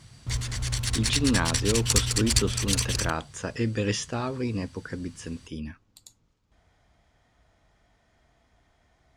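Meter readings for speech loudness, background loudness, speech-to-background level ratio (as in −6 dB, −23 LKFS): −30.0 LKFS, −26.0 LKFS, −4.0 dB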